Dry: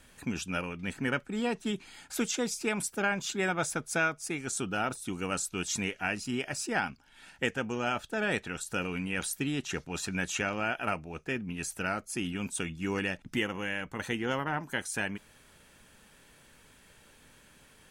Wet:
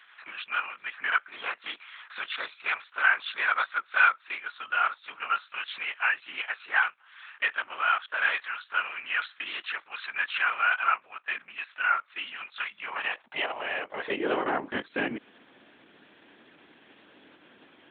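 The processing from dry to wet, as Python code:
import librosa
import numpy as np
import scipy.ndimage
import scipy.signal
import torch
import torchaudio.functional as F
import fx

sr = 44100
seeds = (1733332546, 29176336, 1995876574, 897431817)

y = fx.lpc_vocoder(x, sr, seeds[0], excitation='whisper', order=8)
y = fx.filter_sweep_highpass(y, sr, from_hz=1300.0, to_hz=280.0, start_s=12.7, end_s=14.72, q=2.2)
y = F.gain(torch.from_numpy(y), 3.5).numpy()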